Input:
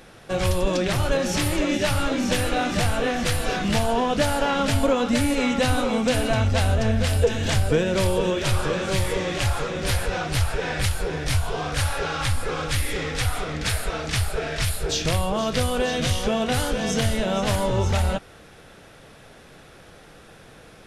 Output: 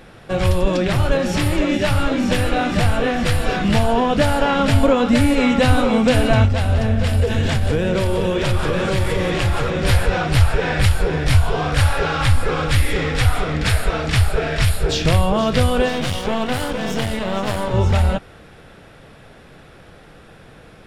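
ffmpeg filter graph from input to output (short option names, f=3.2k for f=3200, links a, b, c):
-filter_complex "[0:a]asettb=1/sr,asplit=3[a][b][c];[a]atrim=end=6.454[d];[b]atrim=start=6.45:end=9.7,asetpts=PTS-STARTPTS,afade=t=in:d=0.004:c=qsin,afade=t=out:st=3.246:d=0.004:c=qsin,acompressor=threshold=-22dB:ratio=5:attack=3.2:release=140:knee=1:detection=peak,aecho=1:1:180:0.355,atrim=end_sample=143325[e];[c]atrim=start=9.696[f];[d][e]acrossfade=d=0.004:c1=hsin:c2=qsin[g];[g][f]acrossfade=d=0.004:c1=qsin:c2=hsin,asettb=1/sr,asplit=3[h][i][j];[h]atrim=end=15.884[k];[i]atrim=start=15.88:end=17.74,asetpts=PTS-STARTPTS,afade=t=in:d=0.004:c=qsin,afade=t=out:st=1.856:d=0.004:c=qsin,lowshelf=f=110:g=-9.5,aeval=exprs='clip(val(0),-1,0.0251)':c=same[l];[j]atrim=start=17.736[m];[k][l]acrossfade=d=0.004:c1=hsin:c2=qsin[n];[n][m]acrossfade=d=0.004:c1=qsin:c2=hsin,bass=f=250:g=3,treble=f=4k:g=-6,bandreject=f=6.2k:w=15,dynaudnorm=f=450:g=21:m=3dB,volume=3.5dB"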